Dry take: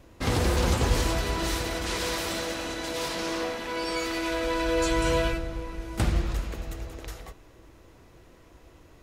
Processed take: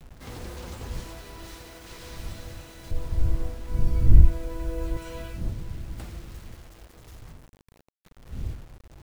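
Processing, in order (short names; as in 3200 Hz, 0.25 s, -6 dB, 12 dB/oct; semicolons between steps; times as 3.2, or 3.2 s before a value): wind noise 81 Hz -23 dBFS; 2.91–4.97 tilt -4 dB/oct; bit-crush 6-bit; gain -15 dB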